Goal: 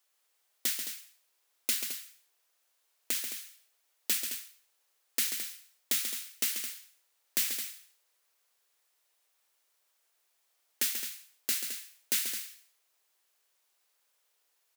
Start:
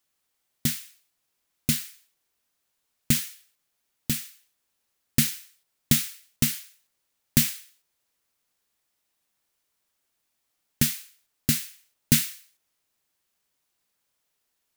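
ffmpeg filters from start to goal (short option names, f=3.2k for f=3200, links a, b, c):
-af "highpass=f=400:w=0.5412,highpass=f=400:w=1.3066,alimiter=limit=-16.5dB:level=0:latency=1:release=425,aecho=1:1:137|215.7:0.398|0.316,volume=1.5dB"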